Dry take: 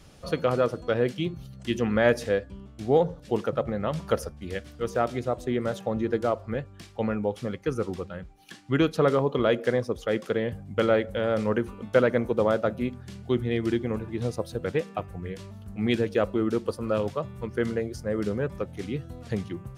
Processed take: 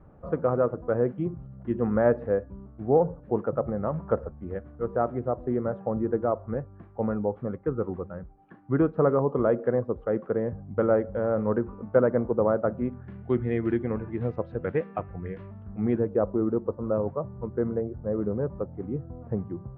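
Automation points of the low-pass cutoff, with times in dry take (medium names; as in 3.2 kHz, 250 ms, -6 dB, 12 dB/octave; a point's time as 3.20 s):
low-pass 24 dB/octave
12.56 s 1.3 kHz
13.34 s 2 kHz
15.48 s 2 kHz
16.17 s 1.1 kHz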